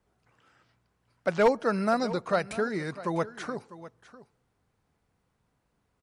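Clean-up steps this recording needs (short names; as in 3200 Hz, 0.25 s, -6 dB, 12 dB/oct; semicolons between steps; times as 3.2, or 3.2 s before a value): clip repair -14 dBFS; inverse comb 0.65 s -16.5 dB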